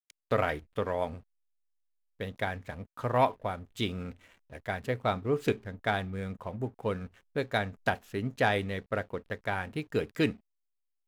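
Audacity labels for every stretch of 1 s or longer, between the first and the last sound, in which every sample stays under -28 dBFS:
1.070000	2.210000	silence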